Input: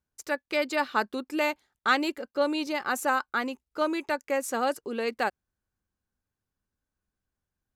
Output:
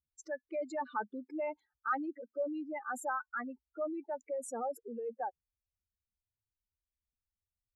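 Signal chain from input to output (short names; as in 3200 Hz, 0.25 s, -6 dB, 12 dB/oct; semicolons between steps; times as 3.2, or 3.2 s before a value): spectral contrast raised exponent 3.3; gain -9 dB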